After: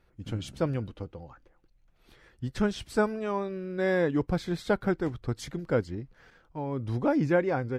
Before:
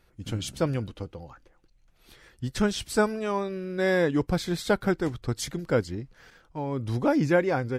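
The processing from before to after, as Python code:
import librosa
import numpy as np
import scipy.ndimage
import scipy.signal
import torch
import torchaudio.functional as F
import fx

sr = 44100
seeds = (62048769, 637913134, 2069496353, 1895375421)

y = fx.high_shelf(x, sr, hz=3800.0, db=-10.5)
y = y * 10.0 ** (-2.0 / 20.0)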